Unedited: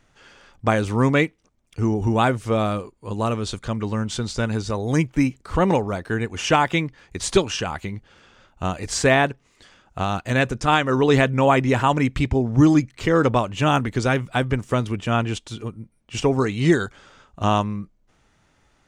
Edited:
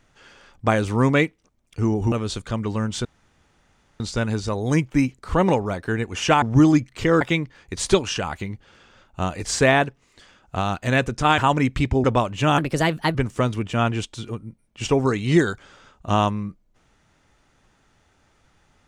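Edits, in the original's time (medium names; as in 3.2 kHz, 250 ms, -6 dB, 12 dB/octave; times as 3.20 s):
2.12–3.29 s: delete
4.22 s: insert room tone 0.95 s
10.81–11.78 s: delete
12.44–13.23 s: move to 6.64 s
13.77–14.48 s: speed 125%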